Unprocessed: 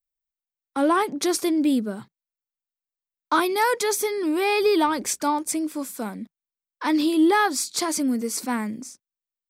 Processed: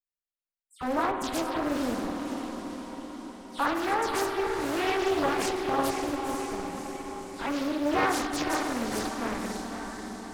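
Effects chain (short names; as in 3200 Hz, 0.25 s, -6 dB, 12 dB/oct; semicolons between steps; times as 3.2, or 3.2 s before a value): spectral delay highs early, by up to 0.113 s; low shelf 420 Hz -7.5 dB; in parallel at -7.5 dB: Schmitt trigger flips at -25.5 dBFS; on the sum: high shelf 5700 Hz -6 dB; on a send: diffused feedback echo 0.497 s, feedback 60%, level -5.5 dB; on the sum: spring tank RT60 1.9 s, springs 47 ms, chirp 60 ms, DRR 4.5 dB; speed mistake 48 kHz file played as 44.1 kHz; Doppler distortion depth 0.74 ms; gain -6.5 dB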